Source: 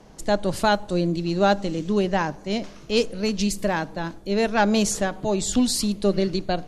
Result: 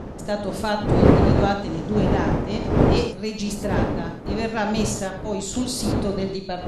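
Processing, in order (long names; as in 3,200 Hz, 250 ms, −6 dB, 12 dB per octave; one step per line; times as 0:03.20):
wind on the microphone 380 Hz −19 dBFS
reverb whose tail is shaped and stops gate 130 ms flat, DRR 4 dB
level −5 dB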